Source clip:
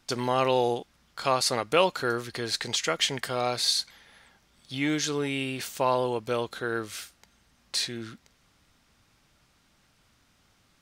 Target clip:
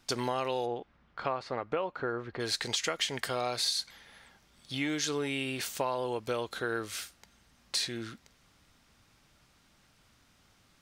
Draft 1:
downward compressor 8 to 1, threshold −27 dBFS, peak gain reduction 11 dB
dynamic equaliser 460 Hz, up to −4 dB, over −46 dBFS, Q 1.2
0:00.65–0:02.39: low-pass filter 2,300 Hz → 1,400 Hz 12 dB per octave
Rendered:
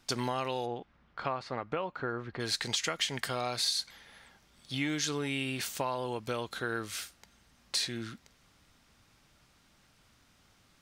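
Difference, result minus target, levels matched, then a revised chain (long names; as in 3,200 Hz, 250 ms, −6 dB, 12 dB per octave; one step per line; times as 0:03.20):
125 Hz band +3.0 dB
downward compressor 8 to 1, threshold −27 dBFS, peak gain reduction 11 dB
dynamic equaliser 170 Hz, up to −4 dB, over −46 dBFS, Q 1.2
0:00.65–0:02.39: low-pass filter 2,300 Hz → 1,400 Hz 12 dB per octave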